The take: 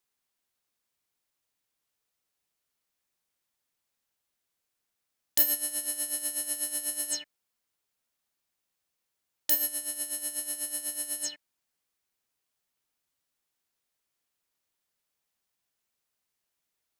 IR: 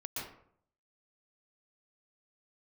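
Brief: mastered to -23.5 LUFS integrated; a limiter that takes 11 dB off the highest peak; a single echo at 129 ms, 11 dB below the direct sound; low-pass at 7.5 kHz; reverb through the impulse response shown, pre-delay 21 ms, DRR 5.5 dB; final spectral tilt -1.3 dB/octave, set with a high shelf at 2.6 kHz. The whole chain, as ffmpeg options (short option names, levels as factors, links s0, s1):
-filter_complex "[0:a]lowpass=7500,highshelf=f=2600:g=-4,alimiter=level_in=1.68:limit=0.0631:level=0:latency=1,volume=0.596,aecho=1:1:129:0.282,asplit=2[s0][s1];[1:a]atrim=start_sample=2205,adelay=21[s2];[s1][s2]afir=irnorm=-1:irlink=0,volume=0.473[s3];[s0][s3]amix=inputs=2:normalize=0,volume=7.94"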